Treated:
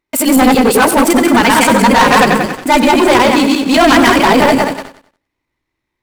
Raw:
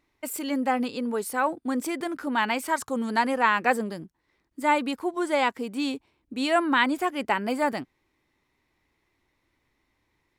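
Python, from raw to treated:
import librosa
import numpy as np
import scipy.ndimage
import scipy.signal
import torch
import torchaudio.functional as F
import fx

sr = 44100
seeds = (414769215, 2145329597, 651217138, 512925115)

p1 = fx.reverse_delay_fb(x, sr, ms=157, feedback_pct=46, wet_db=0.0)
p2 = fx.leveller(p1, sr, passes=5)
p3 = 10.0 ** (-21.5 / 20.0) * (np.abs((p2 / 10.0 ** (-21.5 / 20.0) + 3.0) % 4.0 - 2.0) - 1.0)
p4 = p2 + (p3 * librosa.db_to_amplitude(-8.0))
p5 = fx.stretch_grains(p4, sr, factor=0.58, grain_ms=33.0)
p6 = fx.echo_feedback(p5, sr, ms=95, feedback_pct=34, wet_db=-13.0)
y = p6 * librosa.db_to_amplitude(2.0)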